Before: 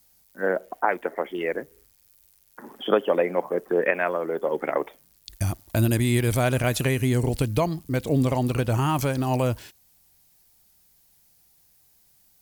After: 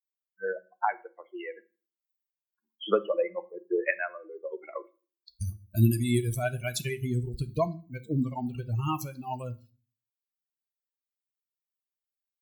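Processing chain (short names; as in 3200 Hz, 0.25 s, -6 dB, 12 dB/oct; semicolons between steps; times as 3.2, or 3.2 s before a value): per-bin expansion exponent 3; on a send: reverb RT60 0.35 s, pre-delay 5 ms, DRR 11 dB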